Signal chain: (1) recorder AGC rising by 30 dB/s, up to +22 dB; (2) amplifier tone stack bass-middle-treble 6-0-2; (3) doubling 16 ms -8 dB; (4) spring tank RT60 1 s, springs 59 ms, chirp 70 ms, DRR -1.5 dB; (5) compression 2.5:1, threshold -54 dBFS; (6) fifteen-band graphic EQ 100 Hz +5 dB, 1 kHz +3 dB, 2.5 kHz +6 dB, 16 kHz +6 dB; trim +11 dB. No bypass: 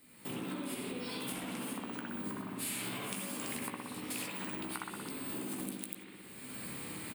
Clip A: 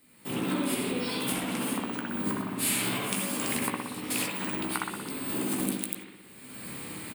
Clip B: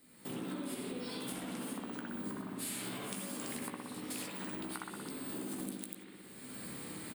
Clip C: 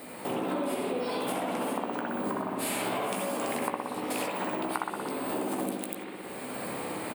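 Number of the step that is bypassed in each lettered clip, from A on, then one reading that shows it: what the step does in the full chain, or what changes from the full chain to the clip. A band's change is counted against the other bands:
5, mean gain reduction 7.5 dB; 6, 2 kHz band -2.0 dB; 2, 500 Hz band +9.5 dB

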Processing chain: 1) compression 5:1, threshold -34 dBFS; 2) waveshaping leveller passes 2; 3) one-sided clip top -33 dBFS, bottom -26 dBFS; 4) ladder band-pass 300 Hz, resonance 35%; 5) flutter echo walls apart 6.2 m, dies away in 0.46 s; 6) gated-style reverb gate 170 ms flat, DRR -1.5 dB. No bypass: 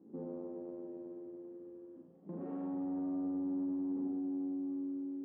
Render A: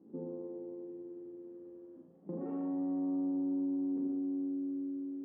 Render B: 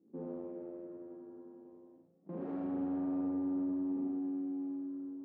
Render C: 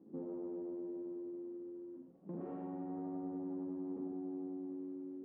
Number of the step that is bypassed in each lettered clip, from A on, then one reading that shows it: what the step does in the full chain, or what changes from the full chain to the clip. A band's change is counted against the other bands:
3, distortion -12 dB; 1, mean gain reduction 3.5 dB; 5, echo-to-direct 4.0 dB to 1.5 dB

